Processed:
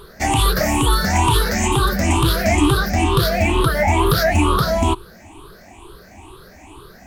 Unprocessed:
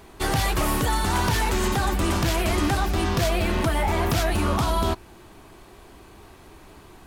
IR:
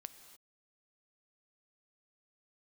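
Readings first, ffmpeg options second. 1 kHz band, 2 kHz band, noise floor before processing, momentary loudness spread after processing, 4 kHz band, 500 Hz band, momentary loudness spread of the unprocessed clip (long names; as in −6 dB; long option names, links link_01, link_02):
+6.0 dB, +6.5 dB, −48 dBFS, 2 LU, +7.0 dB, +6.5 dB, 1 LU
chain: -af "afftfilt=real='re*pow(10,20/40*sin(2*PI*(0.63*log(max(b,1)*sr/1024/100)/log(2)-(2.2)*(pts-256)/sr)))':imag='im*pow(10,20/40*sin(2*PI*(0.63*log(max(b,1)*sr/1024/100)/log(2)-(2.2)*(pts-256)/sr)))':win_size=1024:overlap=0.75,volume=2dB"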